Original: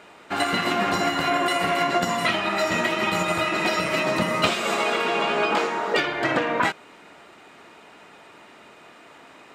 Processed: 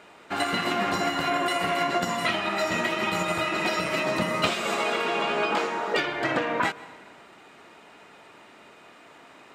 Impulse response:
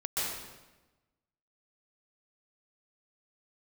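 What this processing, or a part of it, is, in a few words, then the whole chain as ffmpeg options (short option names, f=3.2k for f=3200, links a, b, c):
ducked reverb: -filter_complex "[0:a]asplit=3[a][b][c];[1:a]atrim=start_sample=2205[d];[b][d]afir=irnorm=-1:irlink=0[e];[c]apad=whole_len=420948[f];[e][f]sidechaincompress=threshold=-26dB:ratio=8:attack=42:release=904,volume=-17.5dB[g];[a][g]amix=inputs=2:normalize=0,volume=-3.5dB"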